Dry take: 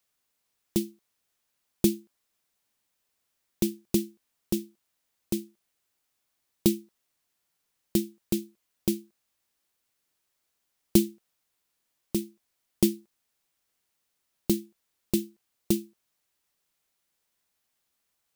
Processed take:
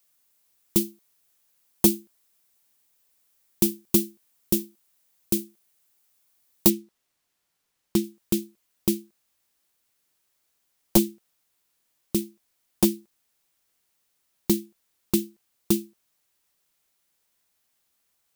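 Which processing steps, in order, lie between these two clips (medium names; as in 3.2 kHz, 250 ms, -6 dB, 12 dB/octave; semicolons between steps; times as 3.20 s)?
one-sided wavefolder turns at -14 dBFS; treble shelf 7.6 kHz +10.5 dB, from 6.70 s -3.5 dB, from 8.04 s +3.5 dB; trim +3 dB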